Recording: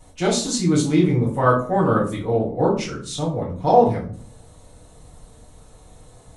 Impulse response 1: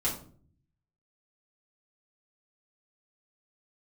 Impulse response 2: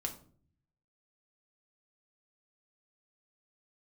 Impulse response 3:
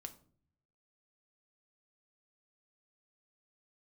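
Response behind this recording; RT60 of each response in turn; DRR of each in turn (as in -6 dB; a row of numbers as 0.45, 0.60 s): 1; 0.50, 0.50, 0.50 s; -7.5, 2.0, 6.5 dB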